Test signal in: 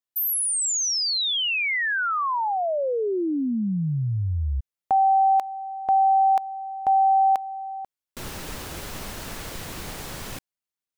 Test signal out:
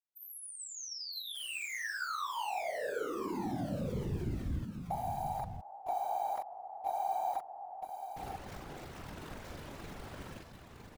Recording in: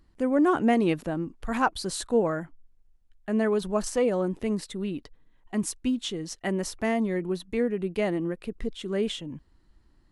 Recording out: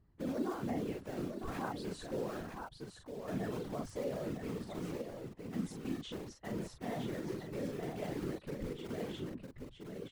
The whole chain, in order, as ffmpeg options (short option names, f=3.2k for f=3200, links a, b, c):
-filter_complex "[0:a]lowpass=f=1.4k:p=1,asplit=2[a][b];[b]acrusher=bits=4:mix=0:aa=0.000001,volume=-5.5dB[c];[a][c]amix=inputs=2:normalize=0,equalizer=f=140:w=7.2:g=-3.5,asplit=2[d][e];[e]adelay=42,volume=-4.5dB[f];[d][f]amix=inputs=2:normalize=0,acompressor=threshold=-32dB:ratio=2.5:attack=0.15:release=66:knee=1:detection=rms,aecho=1:1:960:0.501,afftfilt=real='hypot(re,im)*cos(2*PI*random(0))':imag='hypot(re,im)*sin(2*PI*random(1))':win_size=512:overlap=0.75,volume=-1.5dB"